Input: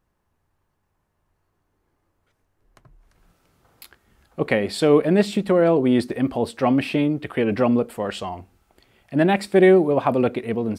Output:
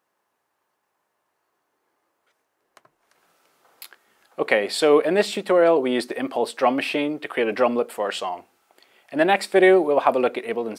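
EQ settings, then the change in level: HPF 460 Hz 12 dB/oct; +3.5 dB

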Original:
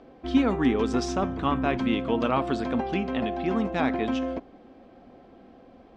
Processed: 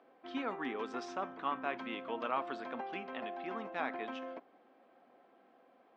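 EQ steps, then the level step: HPF 160 Hz 12 dB/oct; LPF 1400 Hz 12 dB/oct; differentiator; +10.0 dB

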